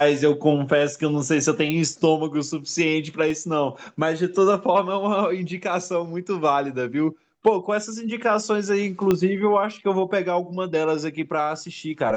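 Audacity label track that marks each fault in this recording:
1.700000	1.700000	pop -11 dBFS
3.300000	3.300000	gap 2.5 ms
9.110000	9.110000	pop -8 dBFS

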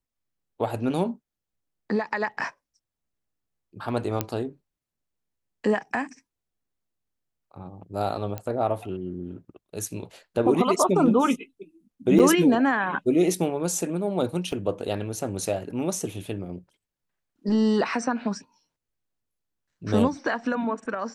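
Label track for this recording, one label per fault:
4.210000	4.210000	pop -9 dBFS
8.380000	8.380000	pop -18 dBFS
12.190000	12.200000	gap 6.6 ms
14.520000	14.520000	gap 2.7 ms

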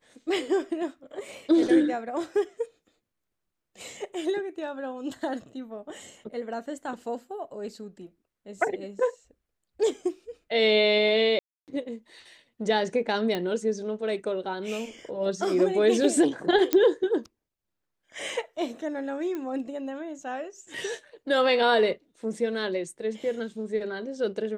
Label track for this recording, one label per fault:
11.390000	11.680000	gap 0.288 s
13.350000	13.350000	pop -16 dBFS
16.730000	16.730000	pop -8 dBFS
19.350000	19.350000	pop -22 dBFS

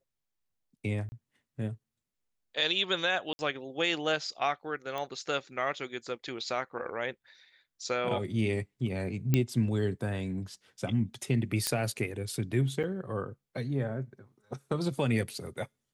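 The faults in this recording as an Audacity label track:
1.090000	1.120000	gap 30 ms
3.330000	3.390000	gap 60 ms
4.980000	4.980000	pop -22 dBFS
9.340000	9.340000	pop -12 dBFS
11.670000	11.670000	pop -11 dBFS
12.830000	12.840000	gap 7.2 ms

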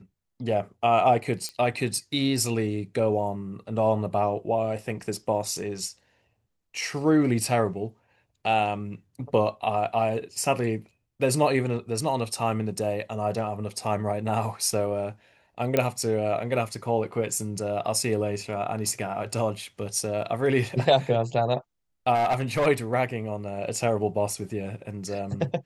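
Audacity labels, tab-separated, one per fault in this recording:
1.490000	1.490000	pop -19 dBFS
15.770000	15.770000	pop -9 dBFS
22.140000	22.670000	clipped -19 dBFS

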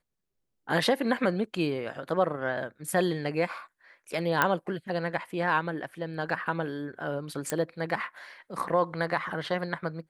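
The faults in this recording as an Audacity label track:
4.420000	4.420000	pop -8 dBFS
7.500000	7.500000	pop -14 dBFS

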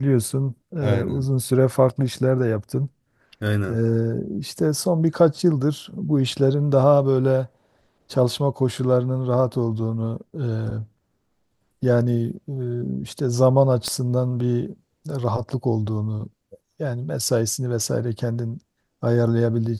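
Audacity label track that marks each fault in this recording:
13.880000	13.880000	pop -12 dBFS

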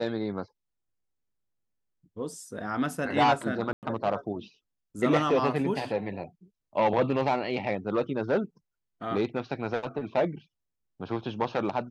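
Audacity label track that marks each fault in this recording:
3.730000	3.830000	gap 98 ms

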